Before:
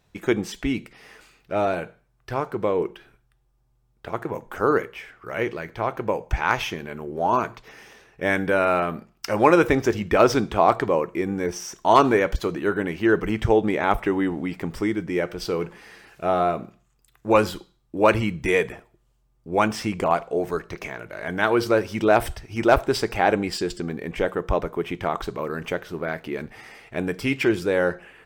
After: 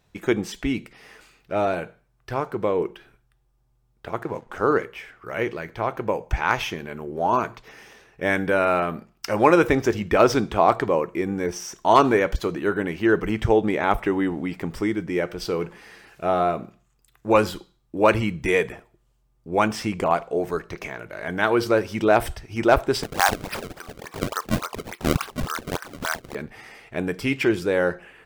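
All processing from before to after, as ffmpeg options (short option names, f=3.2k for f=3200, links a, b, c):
-filter_complex "[0:a]asettb=1/sr,asplit=3[a][b][c];[a]atrim=end=4.234[d];[b]atrim=start=4.23:end=4.85,asetpts=PTS-STARTPTS,afade=t=in:d=0.004:c=qsin,afade=t=out:st=0.616:d=0.004:c=qsin,lowpass=8.1k,aeval=exprs='sgn(val(0))*max(abs(val(0))-0.002,0)':c=same,acompressor=mode=upward:threshold=-42dB:ratio=2.5:attack=3.2:release=140:knee=2.83:detection=peak[e];[c]atrim=start=4.846[f];[d][e]acrossfade=d=0.004:c1=hsin:c2=qsin[g];[g][f]acrossfade=d=0.004:c1=qsin:c2=hsin,asettb=1/sr,asplit=3[h][i][j];[h]atrim=end=23.034[k];[i]atrim=start=23.03:end=26.35,asetpts=PTS-STARTPTS,afade=t=in:d=0.004:c=qsin,afade=t=out:st=3.316:d=0.004:c=qsin,highpass=f=1.1k:t=q:w=2.9,acrusher=samples=29:mix=1:aa=0.000001:lfo=1:lforange=46.4:lforate=3.5[l];[j]atrim=start=26.346[m];[k][l]acrossfade=d=0.004:c1=hsin:c2=qsin[n];[n][m]acrossfade=d=0.004:c1=qsin:c2=hsin"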